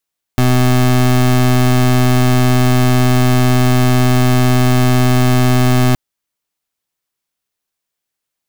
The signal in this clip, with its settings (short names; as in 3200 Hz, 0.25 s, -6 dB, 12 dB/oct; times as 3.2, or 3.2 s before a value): pulse 126 Hz, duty 26% -10.5 dBFS 5.57 s